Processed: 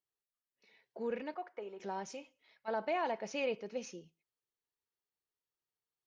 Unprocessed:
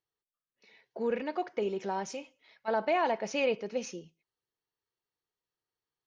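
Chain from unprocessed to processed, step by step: 1.34–1.80 s: three-band isolator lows -14 dB, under 500 Hz, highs -14 dB, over 2.2 kHz; trim -6.5 dB

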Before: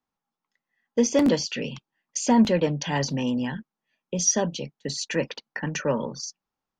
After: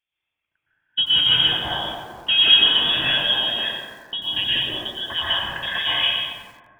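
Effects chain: frequency inversion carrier 3.5 kHz; plate-style reverb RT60 2 s, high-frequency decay 0.3×, pre-delay 105 ms, DRR -8.5 dB; bit-crushed delay 91 ms, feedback 35%, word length 7-bit, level -9.5 dB; trim -1 dB

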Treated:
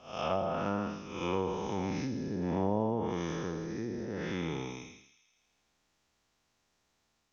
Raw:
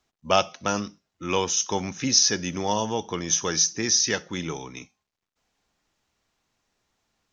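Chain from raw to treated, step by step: spectral blur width 304 ms; low-pass that closes with the level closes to 700 Hz, closed at -24.5 dBFS; feedback echo behind a high-pass 81 ms, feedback 73%, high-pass 3.1 kHz, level -9.5 dB

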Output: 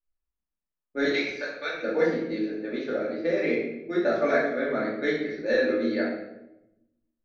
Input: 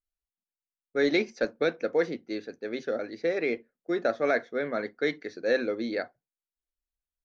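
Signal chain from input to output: level-controlled noise filter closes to 1.9 kHz, open at -22 dBFS; 1.05–1.73 s: high-pass 950 Hz 12 dB/octave; simulated room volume 300 m³, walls mixed, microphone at 2.5 m; trim -5 dB

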